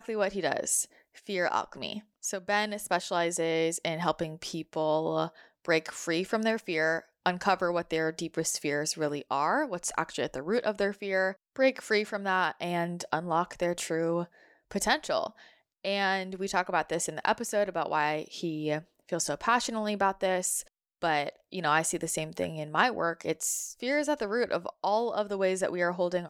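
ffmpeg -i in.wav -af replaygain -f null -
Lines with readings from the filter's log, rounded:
track_gain = +10.5 dB
track_peak = 0.225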